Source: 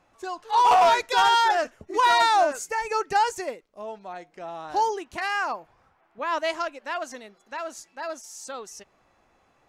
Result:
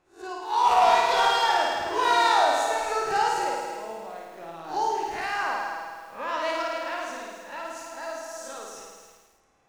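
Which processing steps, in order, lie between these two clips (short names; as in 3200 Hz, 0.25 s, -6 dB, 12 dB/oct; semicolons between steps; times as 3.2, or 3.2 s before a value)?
spectral swells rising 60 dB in 0.35 s; in parallel at -10 dB: backlash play -34.5 dBFS; on the sum: flutter echo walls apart 9.3 m, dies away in 1.4 s; lo-fi delay 0.265 s, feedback 35%, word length 7-bit, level -9 dB; gain -8 dB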